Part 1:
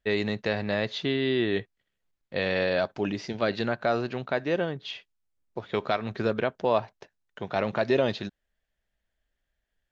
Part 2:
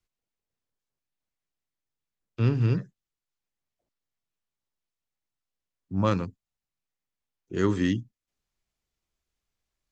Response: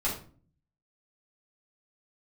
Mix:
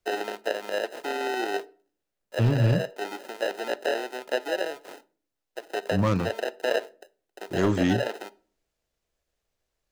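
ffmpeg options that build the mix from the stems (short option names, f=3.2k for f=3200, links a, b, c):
-filter_complex "[0:a]acrusher=samples=39:mix=1:aa=0.000001,highpass=f=370:w=0.5412,highpass=f=370:w=1.3066,acrossover=split=4600[a][b];[b]acompressor=threshold=-44dB:ratio=4:attack=1:release=60[c];[a][c]amix=inputs=2:normalize=0,volume=-0.5dB,asplit=2[d][e];[e]volume=-22.5dB[f];[1:a]asoftclip=type=hard:threshold=-19dB,volume=2.5dB,asplit=2[g][h];[h]apad=whole_len=437322[i];[d][i]sidechaincompress=threshold=-23dB:ratio=8:attack=7.7:release=549[j];[2:a]atrim=start_sample=2205[k];[f][k]afir=irnorm=-1:irlink=0[l];[j][g][l]amix=inputs=3:normalize=0"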